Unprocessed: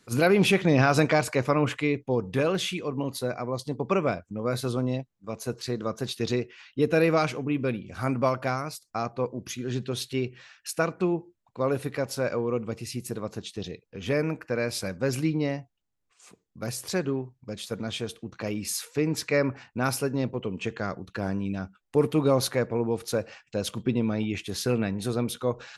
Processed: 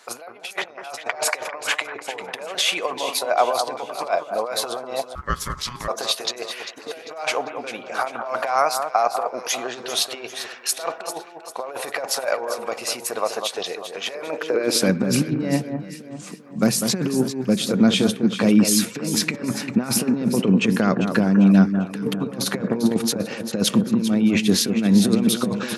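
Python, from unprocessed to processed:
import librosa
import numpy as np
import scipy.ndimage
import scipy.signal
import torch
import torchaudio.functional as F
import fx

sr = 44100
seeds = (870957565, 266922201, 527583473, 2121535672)

p1 = fx.over_compress(x, sr, threshold_db=-31.0, ratio=-0.5)
p2 = p1 + fx.echo_alternate(p1, sr, ms=198, hz=1600.0, feedback_pct=65, wet_db=-7, dry=0)
p3 = fx.filter_sweep_highpass(p2, sr, from_hz=710.0, to_hz=200.0, start_s=14.22, end_s=14.96, q=2.8)
p4 = fx.ring_mod(p3, sr, carrier_hz=610.0, at=(5.15, 5.88))
y = p4 * 10.0 ** (7.5 / 20.0)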